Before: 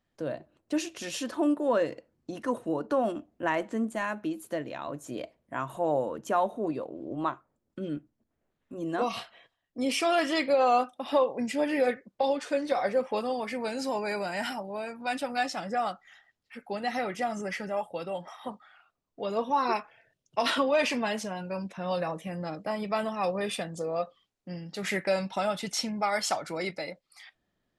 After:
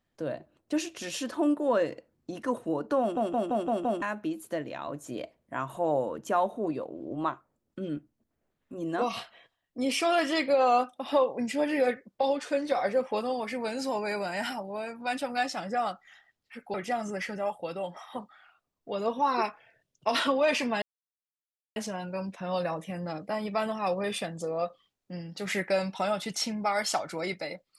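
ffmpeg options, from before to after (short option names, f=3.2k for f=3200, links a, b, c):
-filter_complex "[0:a]asplit=9[a][b][c][d][e][f][g][h][i];[a]atrim=end=3.172[j];[b]atrim=start=2.998:end=3.172[k];[c]atrim=start=2.998:end=3.172[l];[d]atrim=start=2.998:end=3.172[m];[e]atrim=start=2.998:end=3.172[n];[f]atrim=start=2.998:end=3.172[o];[g]atrim=start=4.018:end=16.742[p];[h]atrim=start=17.048:end=21.13,asetpts=PTS-STARTPTS,afade=t=out:st=4.078:d=0.004:c=hsin,apad=pad_dur=0.94[q];[i]atrim=start=21.13,asetpts=PTS-STARTPTS,afade=t=in:d=0.004:c=hsin[r];[j][k]acrossfade=d=0.004:c1=hsin:c2=hsin[s];[s][l]acrossfade=d=0.004:c1=hsin:c2=hsin[t];[t][m]acrossfade=d=0.004:c1=hsin:c2=hsin[u];[u][n]acrossfade=d=0.004:c1=hsin:c2=hsin[v];[v][o]acrossfade=d=0.004:c1=hsin:c2=hsin[w];[w][p]acrossfade=d=0.004:c1=hsin:c2=hsin[x];[q][r]concat=n=2:v=0:a=1[y];[x][y]acrossfade=d=0.004:c1=hsin:c2=hsin"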